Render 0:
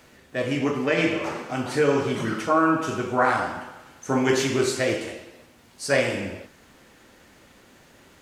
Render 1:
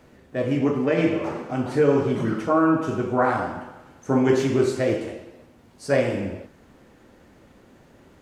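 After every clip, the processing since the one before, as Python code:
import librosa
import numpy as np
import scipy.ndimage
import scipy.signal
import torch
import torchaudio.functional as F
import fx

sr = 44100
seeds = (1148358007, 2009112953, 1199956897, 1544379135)

y = fx.tilt_shelf(x, sr, db=6.5, hz=1200.0)
y = F.gain(torch.from_numpy(y), -2.5).numpy()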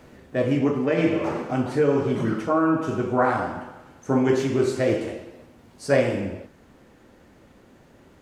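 y = fx.rider(x, sr, range_db=4, speed_s=0.5)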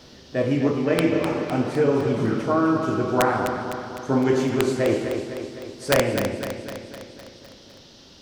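y = (np.mod(10.0 ** (9.0 / 20.0) * x + 1.0, 2.0) - 1.0) / 10.0 ** (9.0 / 20.0)
y = fx.dmg_noise_band(y, sr, seeds[0], low_hz=2800.0, high_hz=5800.0, level_db=-53.0)
y = fx.echo_feedback(y, sr, ms=254, feedback_pct=59, wet_db=-8.0)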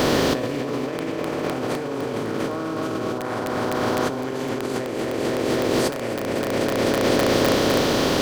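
y = fx.bin_compress(x, sr, power=0.4)
y = fx.over_compress(y, sr, threshold_db=-24.0, ratio=-1.0)
y = fx.rev_fdn(y, sr, rt60_s=3.0, lf_ratio=1.0, hf_ratio=1.0, size_ms=20.0, drr_db=16.5)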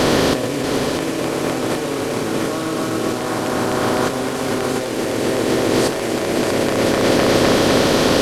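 y = fx.delta_mod(x, sr, bps=64000, step_db=-27.0)
y = y + 10.0 ** (-7.0 / 20.0) * np.pad(y, (int(638 * sr / 1000.0), 0))[:len(y)]
y = F.gain(torch.from_numpy(y), 4.0).numpy()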